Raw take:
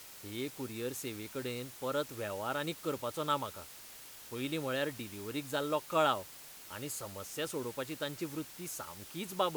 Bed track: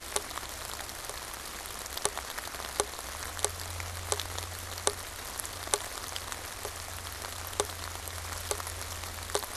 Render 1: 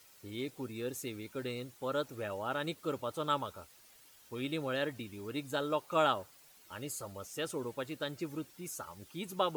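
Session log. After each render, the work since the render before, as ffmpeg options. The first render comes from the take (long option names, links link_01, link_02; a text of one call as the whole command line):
ffmpeg -i in.wav -af "afftdn=noise_reduction=11:noise_floor=-51" out.wav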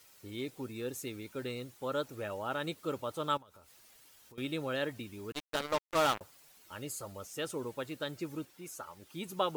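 ffmpeg -i in.wav -filter_complex "[0:a]asettb=1/sr,asplit=3[link_01][link_02][link_03];[link_01]atrim=end=3.374[link_04];[link_02]atrim=start=3.37:end=4.38,asetpts=PTS-STARTPTS,afade=type=in:duration=0.004:curve=qsin,afade=type=out:start_time=1.006:duration=0.004:curve=qsin,acompressor=threshold=-53dB:ratio=16:attack=3.2:release=140:knee=1:detection=peak[link_05];[link_03]atrim=start=4.376[link_06];[link_04][link_05]acrossfade=duration=0.004:curve1=hsin:curve2=qsin[link_07];[link_07][link_06]acrossfade=duration=0.004:curve1=qsin:curve2=hsin,asettb=1/sr,asplit=3[link_08][link_09][link_10];[link_08]atrim=end=5.324[link_11];[link_09]atrim=start=5.32:end=6.21,asetpts=PTS-STARTPTS,afade=type=in:duration=0.004:curve=qsin,afade=type=out:start_time=0.886:duration=0.004:curve=qsin,acrusher=bits=4:mix=0:aa=0.5[link_12];[link_10]atrim=start=6.206[link_13];[link_11][link_12]acrossfade=duration=0.004:curve1=hsin:curve2=qsin[link_14];[link_14][link_13]acrossfade=duration=0.004:curve1=qsin:curve2=hsin,asettb=1/sr,asplit=3[link_15][link_16][link_17];[link_15]atrim=end=8.454[link_18];[link_16]atrim=start=8.45:end=9.1,asetpts=PTS-STARTPTS,afade=type=in:duration=0.004:curve=qsin,afade=type=out:start_time=0.646:duration=0.004:curve=qsin,bass=frequency=250:gain=-6,treble=frequency=4000:gain=-4[link_19];[link_17]atrim=start=9.096[link_20];[link_18][link_19]acrossfade=duration=0.004:curve1=hsin:curve2=qsin[link_21];[link_21][link_20]acrossfade=duration=0.004:curve1=qsin:curve2=hsin" out.wav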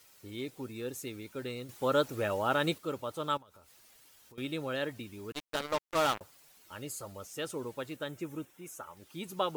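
ffmpeg -i in.wav -filter_complex "[0:a]asettb=1/sr,asplit=3[link_01][link_02][link_03];[link_01]atrim=end=7.964[link_04];[link_02]atrim=start=7.96:end=8.97,asetpts=PTS-STARTPTS,afade=type=in:duration=0.004:curve=qsin,afade=type=out:start_time=1.006:duration=0.004:curve=qsin,equalizer=frequency=4500:width=3.5:gain=-11.5[link_05];[link_03]atrim=start=8.966[link_06];[link_04][link_05]acrossfade=duration=0.004:curve1=hsin:curve2=qsin[link_07];[link_07][link_06]acrossfade=duration=0.004:curve1=qsin:curve2=hsin,asplit=3[link_08][link_09][link_10];[link_08]atrim=end=1.692[link_11];[link_09]atrim=start=1.688:end=2.782,asetpts=PTS-STARTPTS,volume=7dB[link_12];[link_10]atrim=start=2.778[link_13];[link_11][link_12]acrossfade=duration=0.004:curve1=hsin:curve2=hsin[link_14];[link_14][link_13]acrossfade=duration=0.004:curve1=hsin:curve2=hsin" out.wav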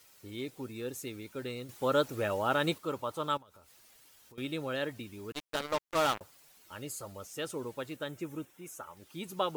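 ffmpeg -i in.wav -filter_complex "[0:a]asettb=1/sr,asplit=3[link_01][link_02][link_03];[link_01]atrim=end=2.684[link_04];[link_02]atrim=start=2.68:end=3.27,asetpts=PTS-STARTPTS,afade=type=in:duration=0.004:curve=qsin,afade=type=out:start_time=0.586:duration=0.004:curve=qsin,equalizer=frequency=1000:width=2.3:gain=6[link_05];[link_03]atrim=start=3.266[link_06];[link_04][link_05]acrossfade=duration=0.004:curve1=hsin:curve2=qsin[link_07];[link_07][link_06]acrossfade=duration=0.004:curve1=qsin:curve2=hsin" out.wav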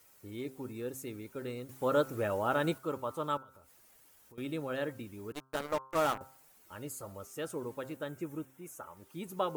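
ffmpeg -i in.wav -af "equalizer=frequency=3900:width=0.78:gain=-8.5,bandreject=frequency=132.2:width_type=h:width=4,bandreject=frequency=264.4:width_type=h:width=4,bandreject=frequency=396.6:width_type=h:width=4,bandreject=frequency=528.8:width_type=h:width=4,bandreject=frequency=661:width_type=h:width=4,bandreject=frequency=793.2:width_type=h:width=4,bandreject=frequency=925.4:width_type=h:width=4,bandreject=frequency=1057.6:width_type=h:width=4,bandreject=frequency=1189.8:width_type=h:width=4,bandreject=frequency=1322:width_type=h:width=4,bandreject=frequency=1454.2:width_type=h:width=4,bandreject=frequency=1586.4:width_type=h:width=4" out.wav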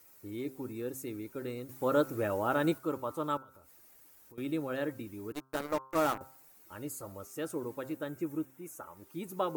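ffmpeg -i in.wav -af "equalizer=frequency=315:width_type=o:width=0.33:gain=6,equalizer=frequency=3150:width_type=o:width=0.33:gain=-4,equalizer=frequency=16000:width_type=o:width=0.33:gain=8" out.wav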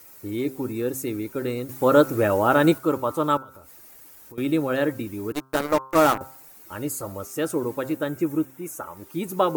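ffmpeg -i in.wav -af "volume=11.5dB" out.wav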